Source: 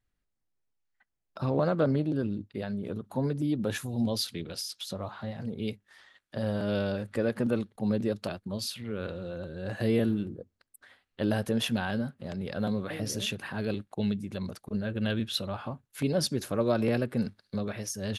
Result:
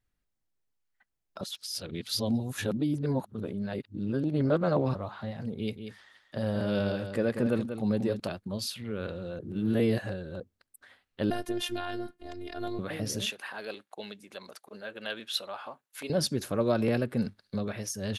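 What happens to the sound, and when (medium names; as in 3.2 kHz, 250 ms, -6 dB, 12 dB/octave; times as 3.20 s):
1.41–4.95 s: reverse
5.57–8.20 s: delay 188 ms -8.5 dB
9.39–10.40 s: reverse
11.30–12.79 s: robot voice 353 Hz
13.30–16.10 s: high-pass 590 Hz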